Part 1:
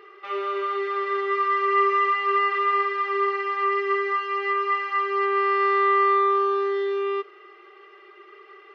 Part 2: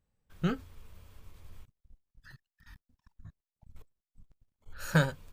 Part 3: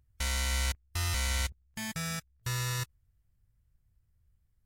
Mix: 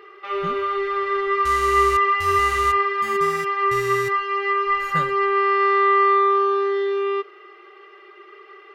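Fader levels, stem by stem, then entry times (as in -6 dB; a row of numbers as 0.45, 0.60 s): +3.0, -5.0, -2.5 dB; 0.00, 0.00, 1.25 s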